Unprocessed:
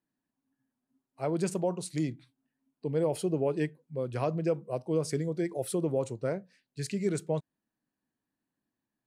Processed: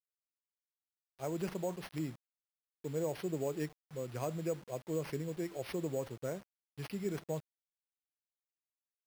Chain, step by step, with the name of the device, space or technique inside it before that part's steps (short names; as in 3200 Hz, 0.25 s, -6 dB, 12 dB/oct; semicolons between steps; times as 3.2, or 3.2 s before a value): early 8-bit sampler (sample-rate reducer 7400 Hz, jitter 0%; bit-crush 8-bit); gain -7.5 dB